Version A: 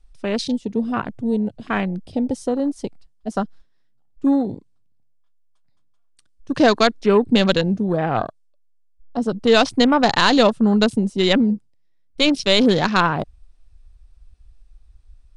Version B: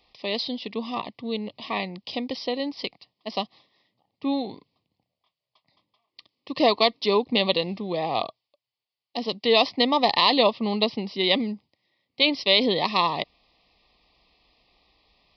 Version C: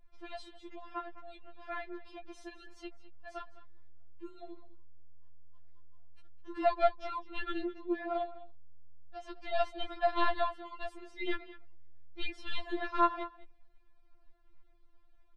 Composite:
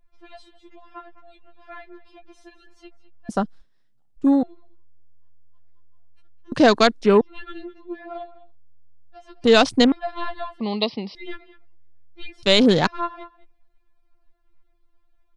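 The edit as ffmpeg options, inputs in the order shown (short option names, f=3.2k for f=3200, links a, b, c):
-filter_complex "[0:a]asplit=4[a][b][c][d];[2:a]asplit=6[e][f][g][h][i][j];[e]atrim=end=3.292[k];[a]atrim=start=3.288:end=4.432[l];[f]atrim=start=4.428:end=6.522[m];[b]atrim=start=6.518:end=7.212[n];[g]atrim=start=7.208:end=9.442[o];[c]atrim=start=9.438:end=9.922[p];[h]atrim=start=9.918:end=10.602[q];[1:a]atrim=start=10.598:end=11.152[r];[i]atrim=start=11.148:end=12.432[s];[d]atrim=start=12.428:end=12.872[t];[j]atrim=start=12.868[u];[k][l]acrossfade=d=0.004:c1=hsin:c2=hsin[v];[v][m]acrossfade=d=0.004:c1=hsin:c2=hsin[w];[w][n]acrossfade=d=0.004:c1=hsin:c2=hsin[x];[x][o]acrossfade=d=0.004:c1=hsin:c2=hsin[y];[y][p]acrossfade=d=0.004:c1=hsin:c2=hsin[z];[z][q]acrossfade=d=0.004:c1=hsin:c2=hsin[aa];[aa][r]acrossfade=d=0.004:c1=hsin:c2=hsin[ab];[ab][s]acrossfade=d=0.004:c1=hsin:c2=hsin[ac];[ac][t]acrossfade=d=0.004:c1=hsin:c2=hsin[ad];[ad][u]acrossfade=d=0.004:c1=hsin:c2=hsin"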